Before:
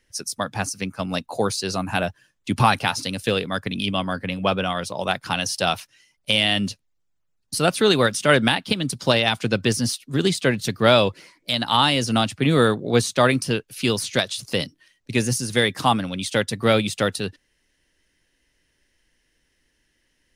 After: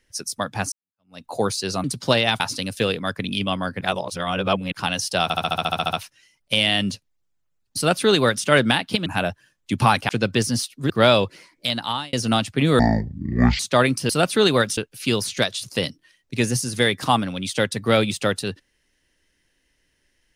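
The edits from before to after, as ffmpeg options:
-filter_complex "[0:a]asplit=24[a][b][c][d][e][f][g][h][i][j][k][l][m][n][o][p][q][r][s][t][u][v][w][x];[a]atrim=end=0.72,asetpts=PTS-STARTPTS,afade=t=out:st=0.716:d=0.004:c=hsin[y];[b]atrim=start=0.72:end=1.842,asetpts=PTS-STARTPTS,afade=t=in:d=0.53:c=exp[z];[c]atrim=start=8.828:end=9.392[aa];[d]atrim=start=2.868:end=4.282[ab];[e]atrim=start=4.278:end=5.192,asetpts=PTS-STARTPTS,areverse[ac];[f]atrim=start=5.188:end=5.772[ad];[g]atrim=start=5.698:end=5.772[ae];[h]atrim=start=5.698:end=5.772[af];[i]atrim=start=5.698:end=5.772[ag];[j]atrim=start=5.698:end=5.772[ah];[k]atrim=start=5.698:end=5.772[ai];[l]atrim=start=5.698:end=5.772[aj];[m]atrim=start=5.698:end=5.772[ak];[n]atrim=start=5.698:end=5.772[al];[o]atrim=start=5.698:end=5.772[am];[p]atrim=start=5.698:end=8.832[an];[q]atrim=start=1.838:end=2.872[ao];[r]atrim=start=9.388:end=10.202[ap];[s]atrim=start=10.738:end=11.97,asetpts=PTS-STARTPTS,afade=t=out:st=0.762:d=0.47[aq];[t]atrim=start=11.97:end=12.634,asetpts=PTS-STARTPTS,afade=t=in:d=0.004:c=hsin[ar];[u]atrim=start=12.63:end=13.04,asetpts=PTS-STARTPTS,asetrate=22491,aresample=44100[as];[v]atrim=start=13.036:end=13.542[at];[w]atrim=start=7.538:end=8.222[au];[x]atrim=start=13.538[av];[y][z]concat=n=2:v=0:a=1[aw];[aw][aa]acrossfade=d=0.004:c1=hsin:c2=hsin[ax];[ax][ab]acrossfade=d=0.004:c1=hsin:c2=hsin[ay];[ay][ac]acrossfade=d=0.004:c1=hsin:c2=hsin[az];[az][ad]acrossfade=d=0.004:c1=hsin:c2=hsin[ba];[ba][ae]acrossfade=d=0.004:c1=hsin:c2=hsin[bb];[bb][af]acrossfade=d=0.004:c1=hsin:c2=hsin[bc];[bc][ag]acrossfade=d=0.004:c1=hsin:c2=hsin[bd];[bd][ah]acrossfade=d=0.004:c1=hsin:c2=hsin[be];[be][ai]acrossfade=d=0.004:c1=hsin:c2=hsin[bf];[bf][aj]acrossfade=d=0.004:c1=hsin:c2=hsin[bg];[bg][ak]acrossfade=d=0.004:c1=hsin:c2=hsin[bh];[bh][al]acrossfade=d=0.004:c1=hsin:c2=hsin[bi];[bi][am]acrossfade=d=0.004:c1=hsin:c2=hsin[bj];[bj][an]acrossfade=d=0.004:c1=hsin:c2=hsin[bk];[bk][ao]acrossfade=d=0.004:c1=hsin:c2=hsin[bl];[bl][ap]acrossfade=d=0.004:c1=hsin:c2=hsin[bm];[aq][ar]concat=n=2:v=0:a=1[bn];[bm][bn]acrossfade=d=0.004:c1=hsin:c2=hsin[bo];[bo][as]acrossfade=d=0.004:c1=hsin:c2=hsin[bp];[bp][at]acrossfade=d=0.004:c1=hsin:c2=hsin[bq];[bq][au]acrossfade=d=0.004:c1=hsin:c2=hsin[br];[br][av]acrossfade=d=0.004:c1=hsin:c2=hsin"

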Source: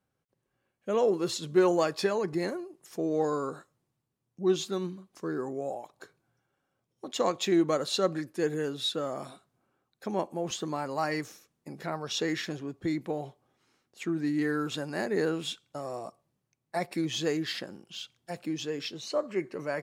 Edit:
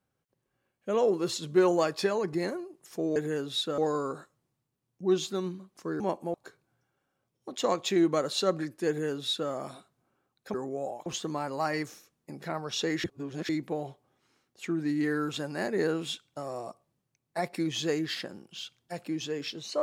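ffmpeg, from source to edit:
-filter_complex "[0:a]asplit=9[a][b][c][d][e][f][g][h][i];[a]atrim=end=3.162[j];[b]atrim=start=8.438:end=9.062[k];[c]atrim=start=3.158:end=5.382[l];[d]atrim=start=10.098:end=10.442[m];[e]atrim=start=5.898:end=10.102[n];[f]atrim=start=5.378:end=5.902[o];[g]atrim=start=10.438:end=12.422[p];[h]atrim=start=12.418:end=12.872,asetpts=PTS-STARTPTS,areverse[q];[i]atrim=start=12.868[r];[j][k]acrossfade=d=0.004:c1=hsin:c2=hsin[s];[s][l]acrossfade=d=0.004:c1=hsin:c2=hsin[t];[t][m]acrossfade=d=0.004:c1=hsin:c2=hsin[u];[u][n]acrossfade=d=0.004:c1=hsin:c2=hsin[v];[v][o]acrossfade=d=0.004:c1=hsin:c2=hsin[w];[w][p]acrossfade=d=0.004:c1=hsin:c2=hsin[x];[x][q]acrossfade=d=0.004:c1=hsin:c2=hsin[y];[y][r]acrossfade=d=0.004:c1=hsin:c2=hsin"

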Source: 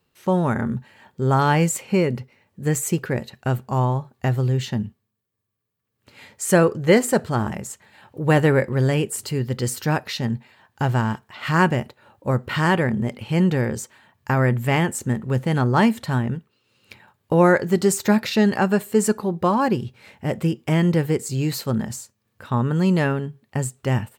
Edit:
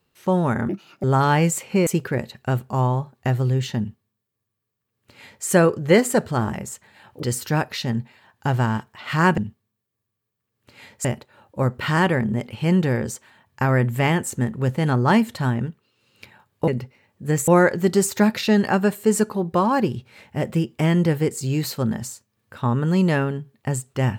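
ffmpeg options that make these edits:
-filter_complex "[0:a]asplit=9[a][b][c][d][e][f][g][h][i];[a]atrim=end=0.694[j];[b]atrim=start=0.69:end=1.22,asetpts=PTS-STARTPTS,asetrate=67473,aresample=44100,atrim=end_sample=15276,asetpts=PTS-STARTPTS[k];[c]atrim=start=1.216:end=2.052[l];[d]atrim=start=2.848:end=8.212[m];[e]atrim=start=9.578:end=11.732[n];[f]atrim=start=4.768:end=6.442[o];[g]atrim=start=11.728:end=17.362[p];[h]atrim=start=2.048:end=2.852[q];[i]atrim=start=17.358[r];[j][k]acrossfade=d=0.004:c1=hsin:c2=hsin[s];[s][l]acrossfade=d=0.004:c1=hsin:c2=hsin[t];[t][m]acrossfade=d=0.004:c1=hsin:c2=hsin[u];[u][n]acrossfade=d=0.004:c1=hsin:c2=hsin[v];[v][o]acrossfade=d=0.004:c1=hsin:c2=hsin[w];[w][p]acrossfade=d=0.004:c1=hsin:c2=hsin[x];[x][q]acrossfade=d=0.004:c1=hsin:c2=hsin[y];[y][r]acrossfade=d=0.004:c1=hsin:c2=hsin"

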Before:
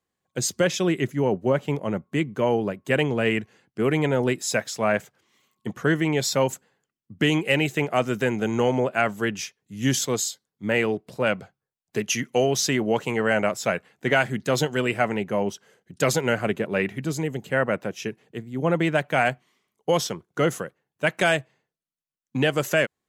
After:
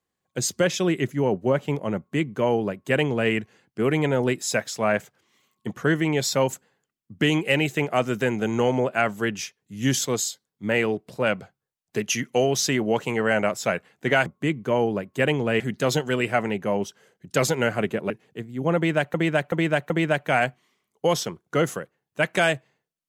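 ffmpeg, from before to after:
-filter_complex "[0:a]asplit=7[a][b][c][d][e][f][g];[a]atrim=end=14.262[h];[b]atrim=start=1.968:end=3.312[i];[c]atrim=start=14.258:end=16.762[j];[d]atrim=start=18.078:end=19.122[k];[e]atrim=start=18.738:end=19.122[l];[f]atrim=start=18.738:end=19.122[m];[g]atrim=start=18.738[n];[h][i]acrossfade=d=0.004:c1=hsin:c2=hsin[o];[o][j]acrossfade=d=0.004:c1=hsin:c2=hsin[p];[p][k]acrossfade=d=0.004:c1=hsin:c2=hsin[q];[q][l]acrossfade=d=0.004:c1=hsin:c2=hsin[r];[r][m]acrossfade=d=0.004:c1=hsin:c2=hsin[s];[s][n]acrossfade=d=0.004:c1=hsin:c2=hsin"

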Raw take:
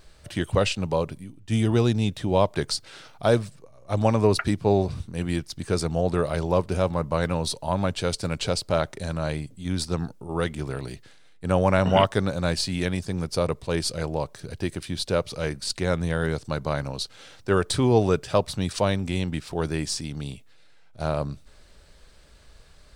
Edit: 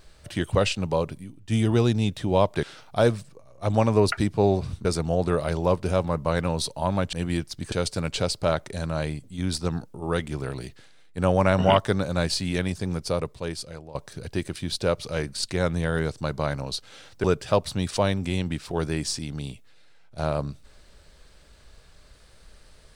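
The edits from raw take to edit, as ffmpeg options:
-filter_complex "[0:a]asplit=7[a][b][c][d][e][f][g];[a]atrim=end=2.632[h];[b]atrim=start=2.898:end=5.122[i];[c]atrim=start=5.708:end=7.992[j];[d]atrim=start=5.118:end=5.712[k];[e]atrim=start=7.988:end=14.22,asetpts=PTS-STARTPTS,afade=t=out:st=5.192:d=1.04:silence=0.11885[l];[f]atrim=start=14.22:end=17.512,asetpts=PTS-STARTPTS,afade=t=in:d=0.004:c=hsin:silence=0.11885[m];[g]atrim=start=18.058[n];[h][i]acrossfade=d=0.004:c1=hsin:c2=hsin[o];[o][j]acrossfade=d=0.004:c1=hsin:c2=hsin[p];[p][k]acrossfade=d=0.004:c1=hsin:c2=hsin[q];[l][m]concat=n=2:v=0:a=1[r];[q][r]acrossfade=d=0.004:c1=hsin:c2=hsin[s];[s][n]acrossfade=d=0.004:c1=hsin:c2=hsin"

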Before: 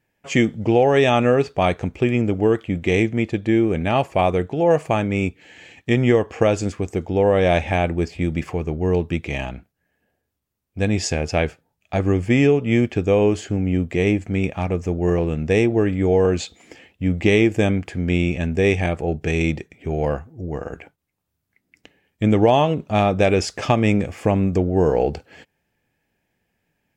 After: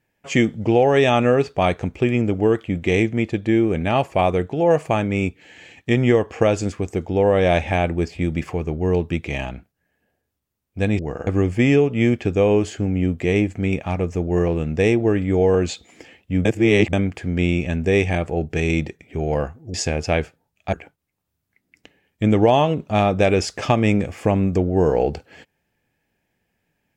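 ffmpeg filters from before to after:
-filter_complex "[0:a]asplit=7[a][b][c][d][e][f][g];[a]atrim=end=10.992[h];[b]atrim=start=20.448:end=20.732[i];[c]atrim=start=11.978:end=17.162[j];[d]atrim=start=17.158:end=17.642,asetpts=PTS-STARTPTS,areverse[k];[e]atrim=start=17.638:end=20.452[l];[f]atrim=start=10.988:end=11.982[m];[g]atrim=start=20.728[n];[h][i]acrossfade=d=0.004:c1=hsin:c2=hsin[o];[o][j]acrossfade=d=0.004:c1=hsin:c2=hsin[p];[p][k]acrossfade=d=0.004:c1=hsin:c2=hsin[q];[q][l]acrossfade=d=0.004:c1=hsin:c2=hsin[r];[r][m]acrossfade=d=0.004:c1=hsin:c2=hsin[s];[s][n]acrossfade=d=0.004:c1=hsin:c2=hsin"

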